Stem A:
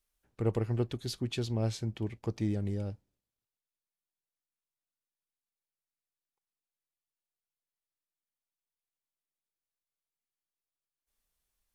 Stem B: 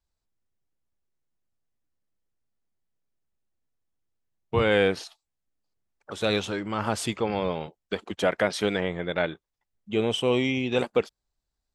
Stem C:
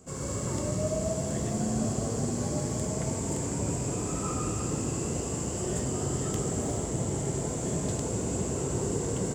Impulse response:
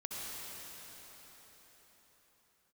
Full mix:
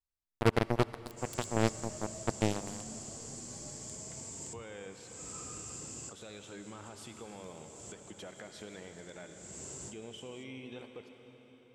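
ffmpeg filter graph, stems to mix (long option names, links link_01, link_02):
-filter_complex "[0:a]acrusher=bits=3:mix=0:aa=0.5,highshelf=frequency=3100:gain=11.5,volume=2.5dB,asplit=2[link_01][link_02];[link_02]volume=-17.5dB[link_03];[1:a]acompressor=threshold=-28dB:ratio=4,alimiter=limit=-20.5dB:level=0:latency=1:release=20,volume=-17.5dB,asplit=3[link_04][link_05][link_06];[link_05]volume=-4dB[link_07];[2:a]lowpass=6100,crystalizer=i=7.5:c=0,adelay=1100,volume=-19.5dB[link_08];[link_06]apad=whole_len=460564[link_09];[link_08][link_09]sidechaincompress=threshold=-59dB:ratio=8:attack=5:release=324[link_10];[3:a]atrim=start_sample=2205[link_11];[link_03][link_07]amix=inputs=2:normalize=0[link_12];[link_12][link_11]afir=irnorm=-1:irlink=0[link_13];[link_01][link_04][link_10][link_13]amix=inputs=4:normalize=0"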